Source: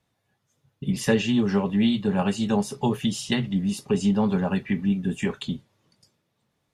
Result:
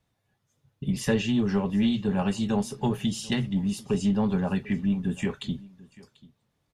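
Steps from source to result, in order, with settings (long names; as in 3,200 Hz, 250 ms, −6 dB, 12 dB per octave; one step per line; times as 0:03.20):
in parallel at −5.5 dB: soft clipping −19.5 dBFS, distortion −13 dB
on the sum: low-shelf EQ 81 Hz +10 dB
single-tap delay 740 ms −22 dB
level −6.5 dB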